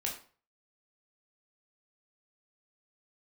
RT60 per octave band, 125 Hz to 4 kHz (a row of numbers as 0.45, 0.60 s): 0.50, 0.40, 0.40, 0.40, 0.35, 0.35 s